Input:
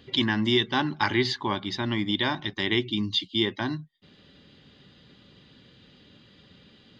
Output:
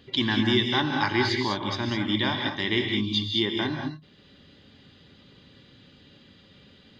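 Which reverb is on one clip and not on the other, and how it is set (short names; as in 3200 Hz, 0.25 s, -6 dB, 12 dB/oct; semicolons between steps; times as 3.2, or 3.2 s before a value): non-linear reverb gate 0.23 s rising, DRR 2.5 dB; gain -1 dB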